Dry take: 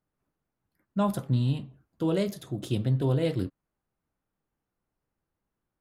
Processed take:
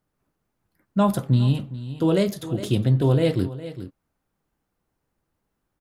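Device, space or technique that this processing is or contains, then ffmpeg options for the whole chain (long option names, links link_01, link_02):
ducked delay: -filter_complex "[0:a]asplit=3[link_01][link_02][link_03];[link_02]adelay=410,volume=-7dB[link_04];[link_03]apad=whole_len=274129[link_05];[link_04][link_05]sidechaincompress=threshold=-33dB:ratio=6:attack=16:release=1010[link_06];[link_01][link_06]amix=inputs=2:normalize=0,volume=6.5dB"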